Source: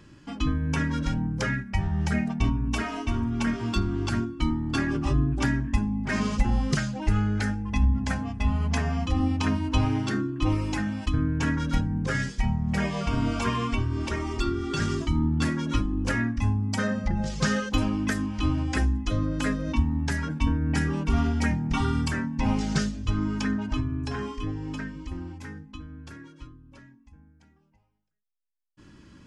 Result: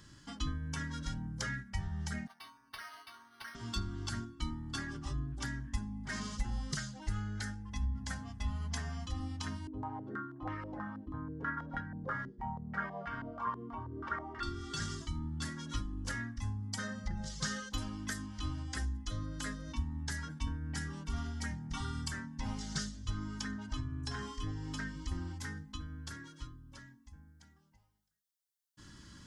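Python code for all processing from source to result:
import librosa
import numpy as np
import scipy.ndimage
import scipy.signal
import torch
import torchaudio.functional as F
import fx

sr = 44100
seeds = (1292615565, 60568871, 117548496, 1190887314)

y = fx.chain(x, sr, fx.highpass(hz=970.0, slope=12),
    fx.resample_linear(factor=6), at=(2.27, 3.55))
y = fx.chain(y, sr, fx.highpass(hz=250.0, slope=6),
    fx.filter_held_lowpass(hz=6.2, low_hz=380.0, high_hz=1700.0), at=(9.67, 14.43))
y = fx.peak_eq(y, sr, hz=2500.0, db=-13.5, octaves=0.33)
y = fx.rider(y, sr, range_db=10, speed_s=0.5)
y = fx.tone_stack(y, sr, knobs='5-5-5')
y = y * librosa.db_to_amplitude(2.5)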